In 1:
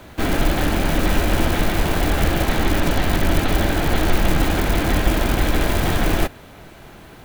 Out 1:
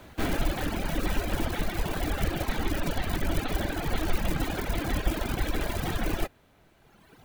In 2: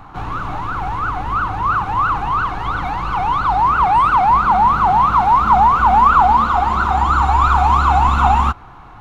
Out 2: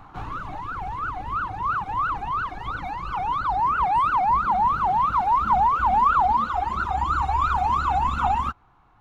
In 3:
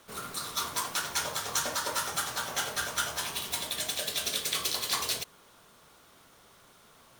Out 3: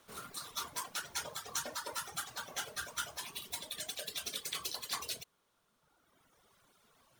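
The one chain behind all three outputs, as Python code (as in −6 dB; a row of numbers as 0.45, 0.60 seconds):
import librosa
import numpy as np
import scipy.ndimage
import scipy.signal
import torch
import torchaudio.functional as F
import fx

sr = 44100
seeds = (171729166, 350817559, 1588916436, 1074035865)

y = fx.dereverb_blind(x, sr, rt60_s=2.0)
y = F.gain(torch.from_numpy(y), -7.0).numpy()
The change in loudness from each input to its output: −10.5, −8.5, −9.0 LU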